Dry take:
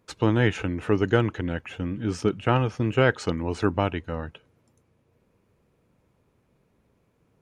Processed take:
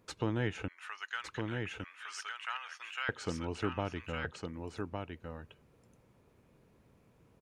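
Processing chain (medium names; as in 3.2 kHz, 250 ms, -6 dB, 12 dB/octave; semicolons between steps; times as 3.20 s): 0.68–3.09 s: high-pass 1.2 kHz 24 dB/octave; compression 1.5:1, threshold -51 dBFS, peak gain reduction 12.5 dB; delay 1159 ms -4.5 dB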